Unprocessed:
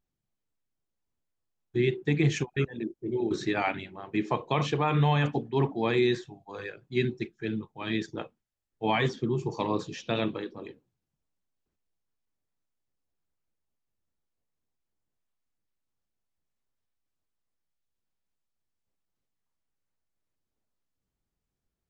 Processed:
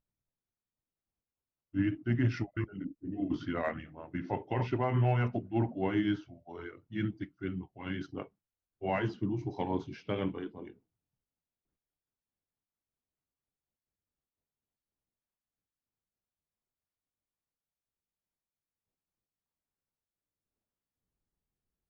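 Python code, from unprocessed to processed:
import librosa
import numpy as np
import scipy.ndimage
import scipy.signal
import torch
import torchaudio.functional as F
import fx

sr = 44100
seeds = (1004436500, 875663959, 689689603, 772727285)

y = fx.pitch_glide(x, sr, semitones=-4.0, runs='ending unshifted')
y = fx.high_shelf(y, sr, hz=2600.0, db=-10.5)
y = fx.cheby_harmonics(y, sr, harmonics=(6,), levels_db=(-38,), full_scale_db=-15.0)
y = F.gain(torch.from_numpy(y), -3.0).numpy()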